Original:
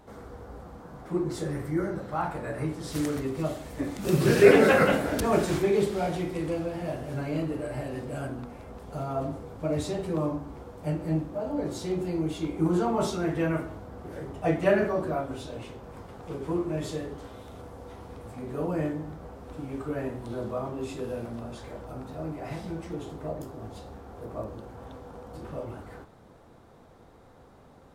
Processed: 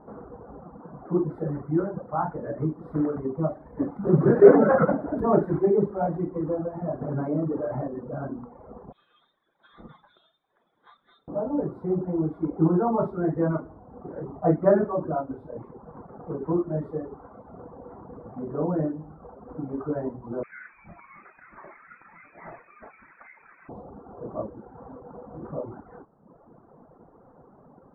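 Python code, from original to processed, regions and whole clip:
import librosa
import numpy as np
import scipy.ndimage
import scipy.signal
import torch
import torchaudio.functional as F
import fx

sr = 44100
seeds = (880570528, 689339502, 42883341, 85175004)

y = fx.chain(x, sr, fx.highpass(hz=76.0, slope=12),
    fx.env_flatten(amount_pct=50), at=(7.01, 7.88))
y = fx.chain(y, sr, fx.highpass(hz=210.0, slope=12),
    fx.freq_invert(carrier_hz=3900), at=(8.92, 11.28))
y = fx.chain(y, sr, fx.highpass(hz=83.0, slope=12),
    fx.freq_invert(carrier_hz=2700),
    fx.env_flatten(amount_pct=50), at=(20.43, 23.69))
y = scipy.signal.sosfilt(scipy.signal.cheby2(4, 40, 2600.0, 'lowpass', fs=sr, output='sos'), y)
y = fx.dereverb_blind(y, sr, rt60_s=1.2)
y = fx.low_shelf_res(y, sr, hz=120.0, db=-7.5, q=1.5)
y = y * librosa.db_to_amplitude(4.0)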